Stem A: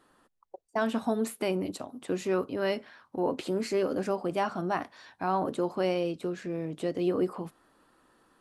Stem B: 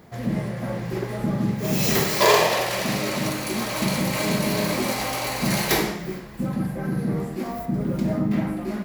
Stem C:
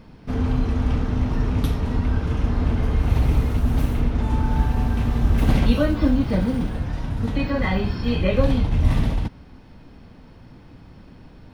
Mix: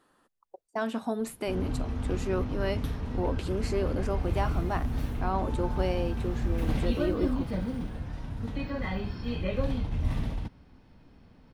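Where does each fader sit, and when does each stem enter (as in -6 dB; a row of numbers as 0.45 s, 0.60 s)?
-2.5 dB, mute, -10.5 dB; 0.00 s, mute, 1.20 s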